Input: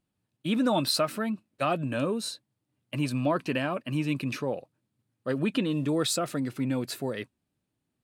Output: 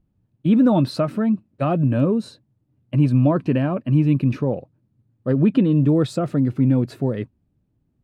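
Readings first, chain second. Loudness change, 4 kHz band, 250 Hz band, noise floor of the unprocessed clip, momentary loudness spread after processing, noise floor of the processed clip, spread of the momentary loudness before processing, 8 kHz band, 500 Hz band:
+9.5 dB, no reading, +11.0 dB, -82 dBFS, 8 LU, -69 dBFS, 11 LU, under -10 dB, +6.5 dB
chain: tilt EQ -4.5 dB/octave; trim +2 dB

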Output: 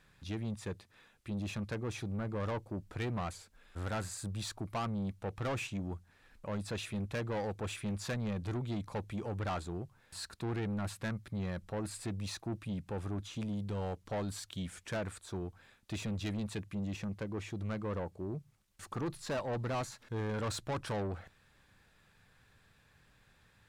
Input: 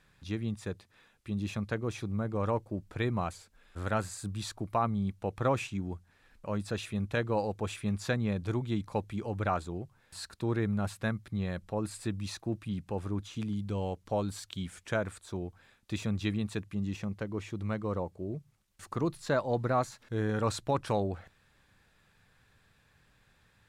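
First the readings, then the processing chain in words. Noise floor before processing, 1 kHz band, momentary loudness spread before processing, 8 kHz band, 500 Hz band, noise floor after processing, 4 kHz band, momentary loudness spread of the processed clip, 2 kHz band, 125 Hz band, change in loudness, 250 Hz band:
-67 dBFS, -6.5 dB, 10 LU, -0.5 dB, -6.0 dB, -67 dBFS, -1.5 dB, 7 LU, -4.5 dB, -4.0 dB, -5.0 dB, -4.5 dB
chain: saturation -32 dBFS, distortion -9 dB

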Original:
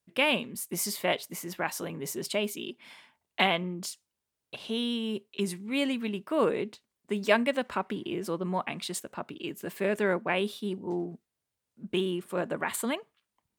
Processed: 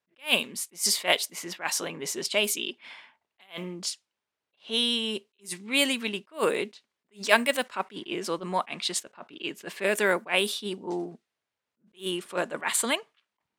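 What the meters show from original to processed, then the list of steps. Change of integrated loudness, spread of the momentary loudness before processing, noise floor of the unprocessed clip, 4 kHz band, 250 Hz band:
+3.0 dB, 12 LU, under -85 dBFS, +7.0 dB, -3.0 dB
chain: level-controlled noise filter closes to 2.1 kHz, open at -23.5 dBFS; RIAA curve recording; attacks held to a fixed rise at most 270 dB/s; trim +5 dB

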